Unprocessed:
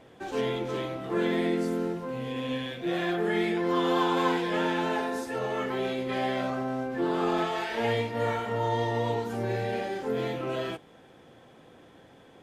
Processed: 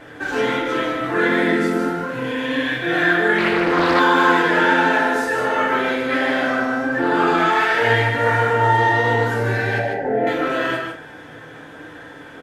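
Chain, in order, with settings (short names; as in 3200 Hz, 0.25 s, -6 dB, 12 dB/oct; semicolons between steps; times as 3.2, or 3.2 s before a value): 8.05–8.78 median filter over 9 samples; in parallel at 0 dB: compressor, threshold -37 dBFS, peak gain reduction 15 dB; 9.78–10.27 on the sum: EQ curve 450 Hz 0 dB, 690 Hz +12 dB, 1200 Hz -22 dB, 1800 Hz -5 dB, 3900 Hz -23 dB; on a send: echo 0.15 s -5.5 dB; on the sum: flange 1.4 Hz, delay 5.2 ms, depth 9.4 ms, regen -59%; bell 1600 Hz +13.5 dB 0.65 oct; FDN reverb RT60 0.39 s, low-frequency decay 0.9×, high-frequency decay 0.95×, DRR 0 dB; 3.38–4 Doppler distortion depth 0.33 ms; gain +6.5 dB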